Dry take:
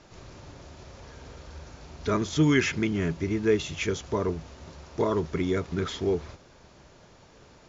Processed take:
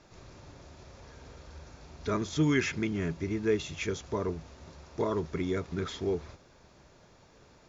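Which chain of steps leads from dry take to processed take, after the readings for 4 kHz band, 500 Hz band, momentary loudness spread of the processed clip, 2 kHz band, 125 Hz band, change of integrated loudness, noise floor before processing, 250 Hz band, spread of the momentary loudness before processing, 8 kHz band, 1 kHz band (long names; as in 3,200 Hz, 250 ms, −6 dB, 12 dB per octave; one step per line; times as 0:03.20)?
−5.0 dB, −4.5 dB, 23 LU, −4.5 dB, −4.5 dB, −4.5 dB, −55 dBFS, −4.5 dB, 23 LU, can't be measured, −4.5 dB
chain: notch filter 3,000 Hz, Q 18
level −4.5 dB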